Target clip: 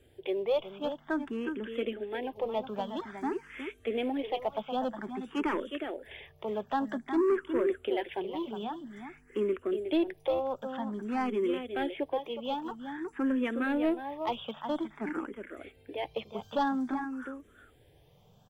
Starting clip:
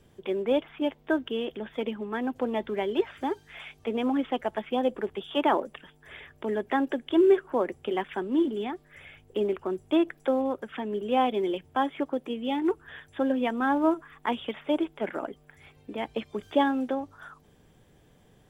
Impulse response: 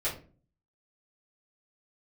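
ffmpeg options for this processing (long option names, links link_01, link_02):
-filter_complex "[0:a]aecho=1:1:364:0.355,asoftclip=type=tanh:threshold=-18.5dB,asplit=2[link_01][link_02];[link_02]afreqshift=0.51[link_03];[link_01][link_03]amix=inputs=2:normalize=1"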